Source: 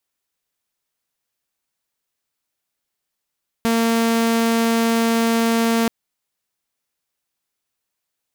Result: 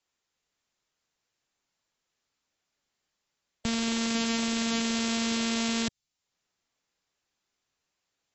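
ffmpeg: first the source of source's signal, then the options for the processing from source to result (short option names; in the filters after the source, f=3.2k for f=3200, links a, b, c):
-f lavfi -i "aevalsrc='0.224*(2*mod(229*t,1)-1)':d=2.23:s=44100"
-filter_complex "[0:a]acrossover=split=160|3000[a][b][c];[b]acompressor=threshold=-47dB:ratio=2[d];[a][d][c]amix=inputs=3:normalize=0,asoftclip=type=tanh:threshold=-15.5dB" -ar 22050 -c:a aac -b:a 24k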